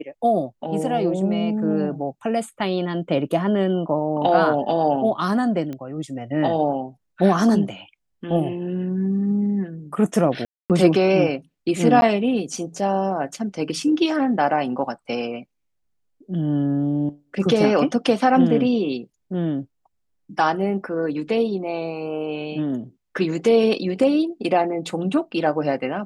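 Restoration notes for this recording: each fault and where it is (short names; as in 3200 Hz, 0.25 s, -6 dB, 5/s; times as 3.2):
5.73 pop -20 dBFS
10.45–10.7 gap 0.248 s
12.01–12.02 gap 11 ms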